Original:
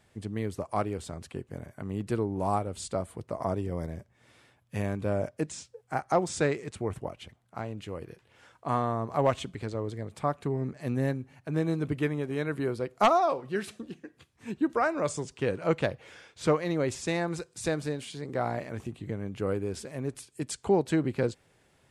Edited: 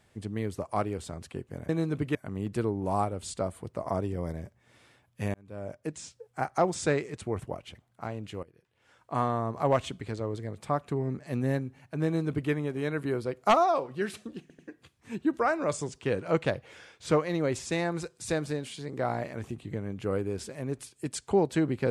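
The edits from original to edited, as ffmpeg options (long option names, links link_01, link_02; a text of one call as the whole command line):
ffmpeg -i in.wav -filter_complex "[0:a]asplit=7[link_01][link_02][link_03][link_04][link_05][link_06][link_07];[link_01]atrim=end=1.692[link_08];[link_02]atrim=start=11.588:end=12.052[link_09];[link_03]atrim=start=1.688:end=4.88,asetpts=PTS-STARTPTS,afade=type=out:start_time=3.188:duration=0.004:curve=hsin[link_10];[link_04]atrim=start=4.88:end=7.97,asetpts=PTS-STARTPTS,afade=type=in:duration=0.85,afade=type=out:start_time=3.086:duration=0.004:curve=hsin:silence=0.133352[link_11];[link_05]atrim=start=7.97:end=14.042,asetpts=PTS-STARTPTS,afade=type=in:duration=0.73:curve=qua:silence=0.133352[link_12];[link_06]atrim=start=13.948:end=14.042[link_13];[link_07]atrim=start=13.948[link_14];[link_08][link_09]acrossfade=duration=0.004:curve1=hsin:curve2=hsin[link_15];[link_10][link_11][link_12]concat=n=3:v=0:a=1[link_16];[link_15][link_16]acrossfade=duration=0.004:curve1=hsin:curve2=hsin[link_17];[link_17][link_13]acrossfade=duration=0.004:curve1=hsin:curve2=hsin[link_18];[link_18][link_14]acrossfade=duration=0.004:curve1=hsin:curve2=hsin" out.wav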